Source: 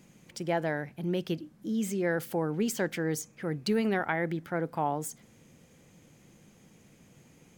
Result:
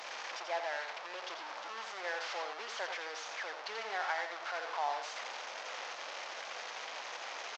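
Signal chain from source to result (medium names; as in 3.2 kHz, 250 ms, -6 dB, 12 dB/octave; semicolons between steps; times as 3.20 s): one-bit delta coder 32 kbps, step -26 dBFS; high-pass 680 Hz 24 dB/octave; treble shelf 2.5 kHz -10 dB; on a send: delay 86 ms -7 dB; on the sum: trim -2.5 dB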